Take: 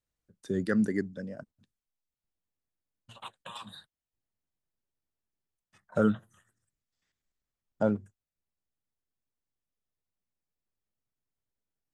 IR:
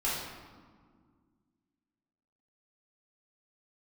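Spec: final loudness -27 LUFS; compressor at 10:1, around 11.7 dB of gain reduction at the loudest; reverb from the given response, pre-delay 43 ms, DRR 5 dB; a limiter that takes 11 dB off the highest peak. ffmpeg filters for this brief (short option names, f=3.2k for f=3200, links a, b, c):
-filter_complex "[0:a]acompressor=threshold=-32dB:ratio=10,alimiter=level_in=7.5dB:limit=-24dB:level=0:latency=1,volume=-7.5dB,asplit=2[a][b];[1:a]atrim=start_sample=2205,adelay=43[c];[b][c]afir=irnorm=-1:irlink=0,volume=-13dB[d];[a][d]amix=inputs=2:normalize=0,volume=18dB"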